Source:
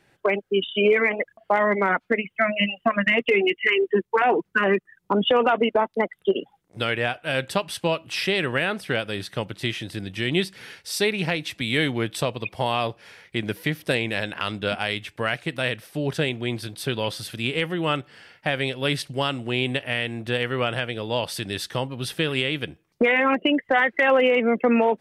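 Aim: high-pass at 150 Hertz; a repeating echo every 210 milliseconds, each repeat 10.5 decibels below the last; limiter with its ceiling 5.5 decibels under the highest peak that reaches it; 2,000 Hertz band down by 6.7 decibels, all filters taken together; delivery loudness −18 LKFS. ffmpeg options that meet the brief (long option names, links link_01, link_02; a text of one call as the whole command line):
ffmpeg -i in.wav -af "highpass=150,equalizer=frequency=2000:width_type=o:gain=-8.5,alimiter=limit=-14.5dB:level=0:latency=1,aecho=1:1:210|420|630:0.299|0.0896|0.0269,volume=9dB" out.wav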